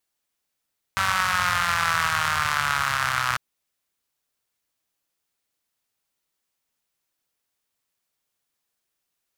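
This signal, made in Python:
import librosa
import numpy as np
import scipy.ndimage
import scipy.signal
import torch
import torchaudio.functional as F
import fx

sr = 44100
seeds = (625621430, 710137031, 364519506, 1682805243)

y = fx.engine_four_rev(sr, seeds[0], length_s=2.4, rpm=5800, resonances_hz=(94.0, 1300.0), end_rpm=3700)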